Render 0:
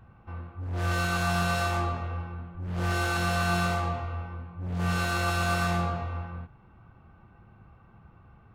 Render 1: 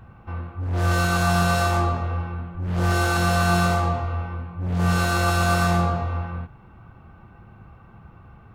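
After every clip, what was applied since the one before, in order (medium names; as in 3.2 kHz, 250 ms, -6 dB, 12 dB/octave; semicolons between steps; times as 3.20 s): dynamic bell 2.5 kHz, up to -5 dB, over -47 dBFS, Q 0.96; trim +7.5 dB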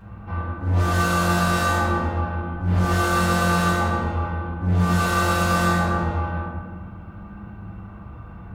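compression 1.5:1, threshold -25 dBFS, peak gain reduction 3.5 dB; reverberation RT60 1.5 s, pre-delay 5 ms, DRR -6.5 dB; trim -1.5 dB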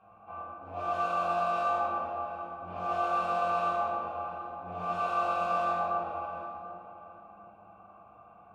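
vowel filter a; tape echo 737 ms, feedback 33%, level -11 dB, low-pass 1.5 kHz; trim +1.5 dB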